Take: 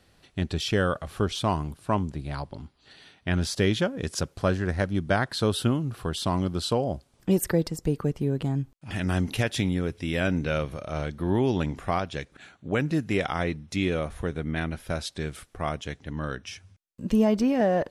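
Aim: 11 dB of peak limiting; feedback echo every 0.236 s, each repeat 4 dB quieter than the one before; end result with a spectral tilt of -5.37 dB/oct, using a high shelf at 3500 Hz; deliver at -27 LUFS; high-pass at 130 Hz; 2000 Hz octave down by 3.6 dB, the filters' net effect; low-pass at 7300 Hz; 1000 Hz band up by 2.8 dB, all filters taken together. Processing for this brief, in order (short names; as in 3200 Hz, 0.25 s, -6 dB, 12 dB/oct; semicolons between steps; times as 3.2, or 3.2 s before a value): HPF 130 Hz; LPF 7300 Hz; bell 1000 Hz +5.5 dB; bell 2000 Hz -8 dB; high shelf 3500 Hz +3 dB; limiter -19 dBFS; feedback echo 0.236 s, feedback 63%, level -4 dB; gain +3 dB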